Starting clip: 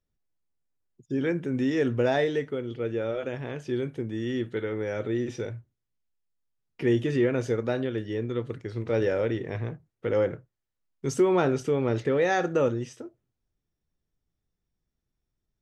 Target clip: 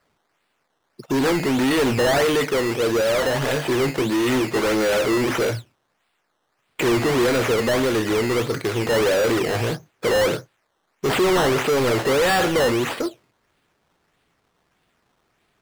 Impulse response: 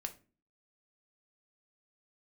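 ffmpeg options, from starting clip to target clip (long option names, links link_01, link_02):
-filter_complex "[0:a]asettb=1/sr,asplit=3[link_01][link_02][link_03];[link_01]atrim=end=3.134[link_04];[link_02]atrim=start=3.13:end=5.56,asetpts=PTS-STARTPTS,afade=type=in:duration=0.004:curve=qsin,afade=type=out:start_time=2.426:duration=0.004:curve=qsin,asplit=2[link_05][link_06];[link_06]adelay=15,volume=-6.5dB[link_07];[link_05][link_07]amix=inputs=2:normalize=0,atrim=end_sample=107163[link_08];[link_03]atrim=start=5.556[link_09];[link_04][link_08]acrossfade=duration=0.004:curve1=hsin:curve2=qsin[link_10];[link_10][link_09]acrossfade=duration=0.004:curve1=qsin:curve2=hsin,acrusher=samples=13:mix=1:aa=0.000001:lfo=1:lforange=13:lforate=1.6,asplit=2[link_11][link_12];[link_12]highpass=frequency=720:poles=1,volume=32dB,asoftclip=type=tanh:threshold=-12.5dB[link_13];[link_11][link_13]amix=inputs=2:normalize=0,lowpass=frequency=7300:poles=1,volume=-6dB"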